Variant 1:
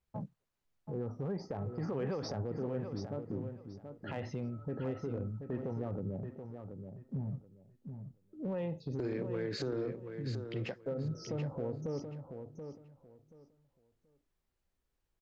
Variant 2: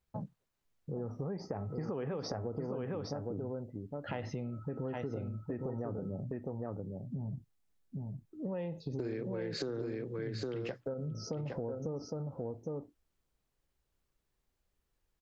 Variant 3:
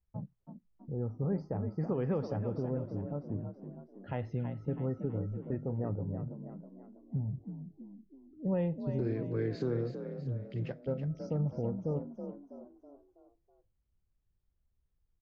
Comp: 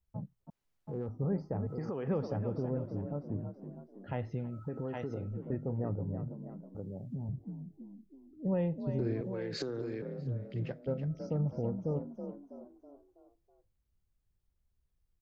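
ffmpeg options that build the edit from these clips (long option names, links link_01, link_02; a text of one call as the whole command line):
ffmpeg -i take0.wav -i take1.wav -i take2.wav -filter_complex "[1:a]asplit=4[link_01][link_02][link_03][link_04];[2:a]asplit=6[link_05][link_06][link_07][link_08][link_09][link_10];[link_05]atrim=end=0.502[link_11];[0:a]atrim=start=0.498:end=1.092[link_12];[link_06]atrim=start=1.088:end=1.672[link_13];[link_01]atrim=start=1.668:end=2.082[link_14];[link_07]atrim=start=2.078:end=4.53[link_15];[link_02]atrim=start=4.29:end=5.38[link_16];[link_08]atrim=start=5.14:end=6.752[link_17];[link_03]atrim=start=6.748:end=7.292[link_18];[link_09]atrim=start=7.288:end=9.212[link_19];[link_04]atrim=start=9.208:end=10.022[link_20];[link_10]atrim=start=10.018[link_21];[link_11][link_12]acrossfade=duration=0.004:curve1=hsin:curve2=hsin[link_22];[link_22][link_13]acrossfade=duration=0.004:curve1=hsin:curve2=hsin[link_23];[link_23][link_14]acrossfade=duration=0.004:curve1=hsin:curve2=hsin[link_24];[link_24][link_15]acrossfade=duration=0.004:curve1=hsin:curve2=hsin[link_25];[link_25][link_16]acrossfade=duration=0.24:curve1=tri:curve2=tri[link_26];[link_26][link_17]acrossfade=duration=0.24:curve1=tri:curve2=tri[link_27];[link_27][link_18]acrossfade=duration=0.004:curve1=hsin:curve2=hsin[link_28];[link_28][link_19]acrossfade=duration=0.004:curve1=hsin:curve2=hsin[link_29];[link_29][link_20]acrossfade=duration=0.004:curve1=hsin:curve2=hsin[link_30];[link_30][link_21]acrossfade=duration=0.004:curve1=hsin:curve2=hsin" out.wav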